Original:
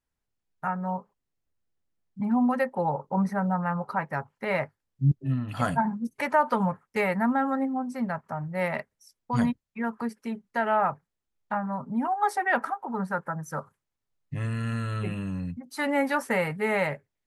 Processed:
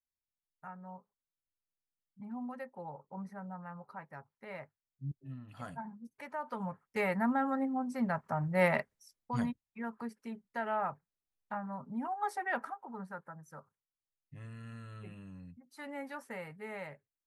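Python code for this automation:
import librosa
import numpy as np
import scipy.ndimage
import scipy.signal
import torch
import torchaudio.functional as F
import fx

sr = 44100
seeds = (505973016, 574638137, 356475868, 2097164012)

y = fx.gain(x, sr, db=fx.line((6.35, -18.0), (7.05, -6.0), (7.62, -6.0), (8.66, 1.0), (9.48, -10.0), (12.54, -10.0), (13.45, -17.5)))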